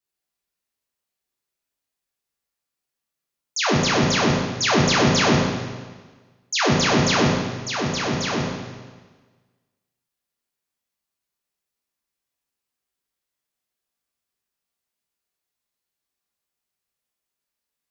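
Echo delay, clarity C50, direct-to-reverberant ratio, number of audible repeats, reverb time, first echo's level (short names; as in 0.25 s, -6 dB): none, 0.5 dB, -4.0 dB, none, 1.4 s, none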